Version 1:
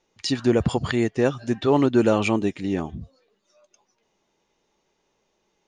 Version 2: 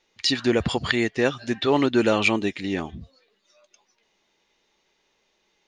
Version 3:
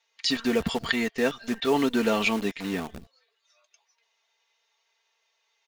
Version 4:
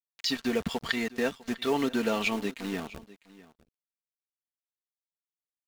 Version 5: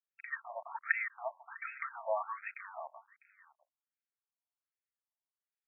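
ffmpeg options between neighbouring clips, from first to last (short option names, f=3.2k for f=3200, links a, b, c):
-af "equalizer=f=125:t=o:w=1:g=-4,equalizer=f=2k:t=o:w=1:g=7,equalizer=f=4k:t=o:w=1:g=8,volume=-1.5dB"
-filter_complex "[0:a]aecho=1:1:4.4:0.69,acrossover=split=540[a][b];[a]acrusher=bits=6:dc=4:mix=0:aa=0.000001[c];[c][b]amix=inputs=2:normalize=0,volume=-5dB"
-filter_complex "[0:a]asplit=2[a][b];[b]acompressor=threshold=-34dB:ratio=6,volume=0.5dB[c];[a][c]amix=inputs=2:normalize=0,aeval=exprs='sgn(val(0))*max(abs(val(0))-0.0126,0)':c=same,aecho=1:1:651:0.1,volume=-5dB"
-af "afftfilt=real='re*between(b*sr/1024,780*pow(1900/780,0.5+0.5*sin(2*PI*1.3*pts/sr))/1.41,780*pow(1900/780,0.5+0.5*sin(2*PI*1.3*pts/sr))*1.41)':imag='im*between(b*sr/1024,780*pow(1900/780,0.5+0.5*sin(2*PI*1.3*pts/sr))/1.41,780*pow(1900/780,0.5+0.5*sin(2*PI*1.3*pts/sr))*1.41)':win_size=1024:overlap=0.75,volume=1dB"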